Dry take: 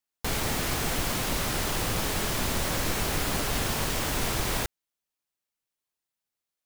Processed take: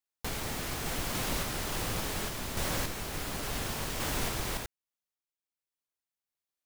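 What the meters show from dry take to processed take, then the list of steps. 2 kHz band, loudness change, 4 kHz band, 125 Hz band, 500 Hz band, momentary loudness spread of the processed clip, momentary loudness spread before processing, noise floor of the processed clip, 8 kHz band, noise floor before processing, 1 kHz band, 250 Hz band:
−6.0 dB, −6.0 dB, −6.0 dB, −6.0 dB, −6.0 dB, 4 LU, 1 LU, below −85 dBFS, −6.0 dB, below −85 dBFS, −6.0 dB, −6.0 dB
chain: sample-and-hold tremolo
level −3.5 dB

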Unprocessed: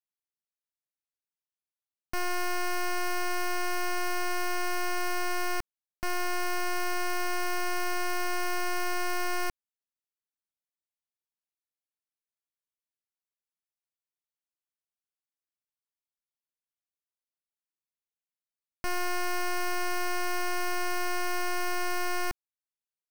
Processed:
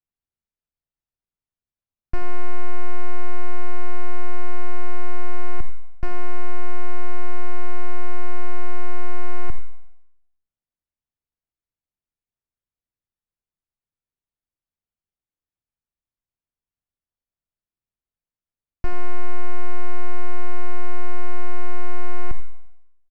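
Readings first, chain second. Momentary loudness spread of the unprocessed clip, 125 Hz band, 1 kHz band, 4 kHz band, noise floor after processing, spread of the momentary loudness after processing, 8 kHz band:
3 LU, +21.5 dB, −2.5 dB, −13.0 dB, below −85 dBFS, 2 LU, below −20 dB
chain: high-shelf EQ 7,800 Hz −8.5 dB
on a send: single-tap delay 85 ms −16.5 dB
on the sum: treble cut that deepens with the level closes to 1,300 Hz, closed at −21 dBFS
four-comb reverb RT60 0.83 s, DRR 14.5 dB
reversed playback
downward compressor, threshold −27 dBFS, peak gain reduction 4.5 dB
reversed playback
RIAA equalisation playback

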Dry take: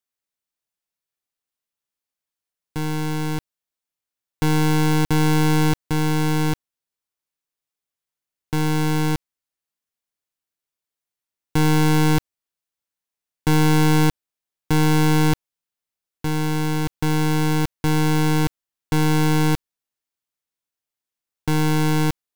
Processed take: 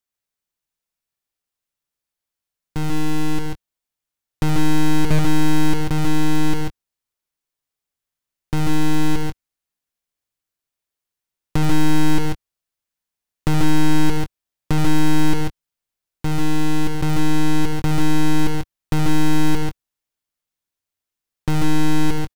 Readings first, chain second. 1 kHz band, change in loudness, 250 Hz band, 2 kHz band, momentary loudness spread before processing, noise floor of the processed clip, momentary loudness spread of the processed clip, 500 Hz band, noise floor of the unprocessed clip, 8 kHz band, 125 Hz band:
−2.0 dB, −1.0 dB, +1.0 dB, −1.5 dB, 10 LU, below −85 dBFS, 9 LU, −3.0 dB, below −85 dBFS, −1.5 dB, −2.0 dB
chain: low-shelf EQ 98 Hz +8 dB
downward compressor 2 to 1, threshold −16 dBFS, peak gain reduction 3.5 dB
multi-tap delay 73/107/140/149/162 ms −14/−18/−4/−18.5/−14.5 dB
highs frequency-modulated by the lows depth 0.6 ms

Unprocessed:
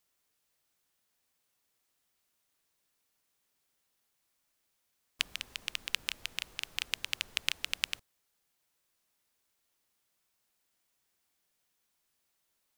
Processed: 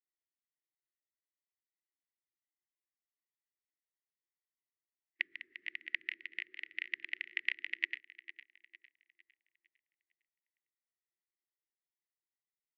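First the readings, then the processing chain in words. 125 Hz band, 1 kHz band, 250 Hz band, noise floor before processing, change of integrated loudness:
below −25 dB, below −20 dB, can't be measured, −79 dBFS, −4.0 dB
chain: pair of resonant band-passes 820 Hz, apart 2.5 octaves
repeating echo 455 ms, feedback 52%, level −11 dB
every bin expanded away from the loudest bin 1.5 to 1
level +9 dB

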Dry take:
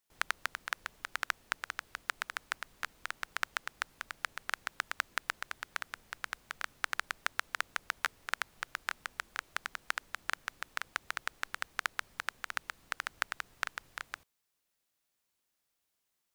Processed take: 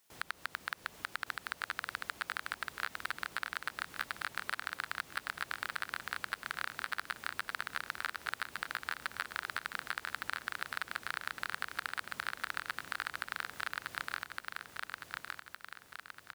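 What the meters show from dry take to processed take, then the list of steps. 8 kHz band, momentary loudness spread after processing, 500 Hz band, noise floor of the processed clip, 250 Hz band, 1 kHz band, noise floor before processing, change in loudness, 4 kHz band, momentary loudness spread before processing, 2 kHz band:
−3.5 dB, 5 LU, −0.5 dB, −61 dBFS, +4.5 dB, 0.0 dB, −82 dBFS, −1.0 dB, −0.5 dB, 6 LU, −0.5 dB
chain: high-pass filter 62 Hz
low-shelf EQ 140 Hz −4 dB
in parallel at +0.5 dB: brickwall limiter −17 dBFS, peak gain reduction 8 dB
on the sum: downward compressor, threshold −32 dBFS, peak gain reduction 10 dB
soft clipping −24.5 dBFS, distortion −7 dB
repeating echo 1,162 ms, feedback 50%, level −3 dB
level +4.5 dB

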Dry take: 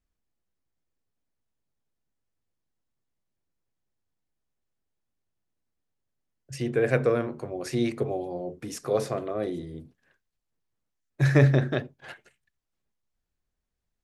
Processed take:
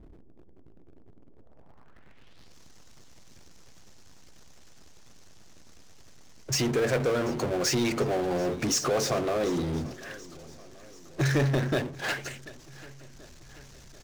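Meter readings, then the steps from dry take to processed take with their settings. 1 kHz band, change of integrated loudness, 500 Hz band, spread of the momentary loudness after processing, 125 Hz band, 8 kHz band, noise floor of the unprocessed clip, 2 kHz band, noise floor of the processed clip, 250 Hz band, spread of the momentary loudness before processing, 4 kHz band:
+3.5 dB, −1.0 dB, −0.5 dB, 19 LU, −4.0 dB, +13.0 dB, −83 dBFS, +1.0 dB, −50 dBFS, 0.0 dB, 22 LU, +10.5 dB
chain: harmonic and percussive parts rebalanced harmonic −6 dB
downward compressor 2 to 1, threshold −37 dBFS, peak gain reduction 11 dB
low-pass filter sweep 360 Hz → 6,200 Hz, 0:01.29–0:02.56
power curve on the samples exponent 0.5
on a send: repeating echo 736 ms, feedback 56%, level −20.5 dB
on the sum: level +2 dB

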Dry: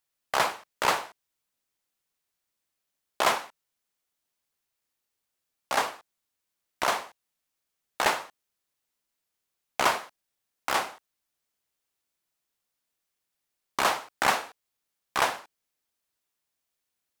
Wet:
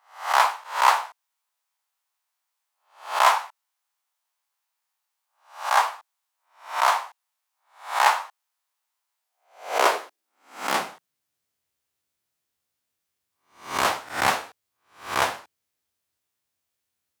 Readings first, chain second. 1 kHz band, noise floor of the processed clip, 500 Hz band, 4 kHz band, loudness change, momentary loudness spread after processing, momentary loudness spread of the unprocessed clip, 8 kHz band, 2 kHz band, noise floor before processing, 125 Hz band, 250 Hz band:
+6.5 dB, −81 dBFS, +2.5 dB, +2.5 dB, +4.5 dB, 16 LU, 13 LU, +2.0 dB, +3.5 dB, −83 dBFS, can't be measured, +0.5 dB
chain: peak hold with a rise ahead of every peak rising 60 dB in 0.41 s
high-pass filter sweep 900 Hz → 80 Hz, 0:09.12–0:11.62

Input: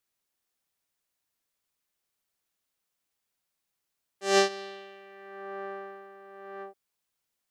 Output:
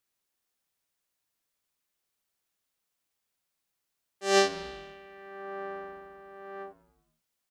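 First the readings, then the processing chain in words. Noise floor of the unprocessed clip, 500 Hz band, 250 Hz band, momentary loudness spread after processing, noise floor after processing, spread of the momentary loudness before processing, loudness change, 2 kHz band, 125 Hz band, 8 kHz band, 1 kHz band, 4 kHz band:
−83 dBFS, 0.0 dB, +0.5 dB, 23 LU, −83 dBFS, 23 LU, −0.5 dB, 0.0 dB, can't be measured, 0.0 dB, 0.0 dB, 0.0 dB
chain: echo with shifted repeats 97 ms, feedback 62%, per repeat −110 Hz, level −22 dB

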